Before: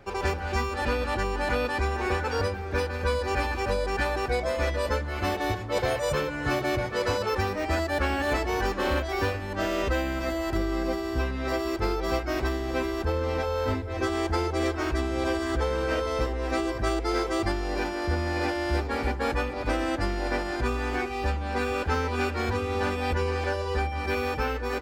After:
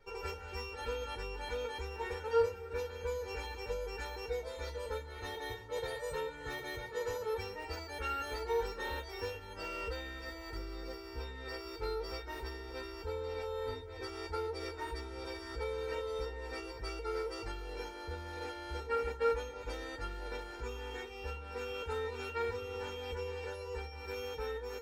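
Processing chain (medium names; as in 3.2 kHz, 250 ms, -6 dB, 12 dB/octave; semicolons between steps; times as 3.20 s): feedback comb 460 Hz, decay 0.17 s, harmonics all, mix 100%; trim +5 dB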